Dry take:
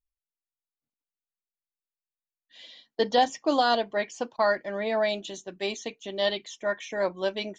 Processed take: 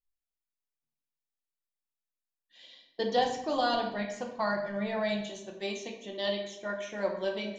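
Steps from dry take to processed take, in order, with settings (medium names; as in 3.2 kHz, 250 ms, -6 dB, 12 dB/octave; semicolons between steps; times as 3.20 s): 3.19–5.25 s: resonant low shelf 200 Hz +9.5 dB, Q 1.5; simulated room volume 290 m³, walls mixed, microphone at 0.91 m; trim -7 dB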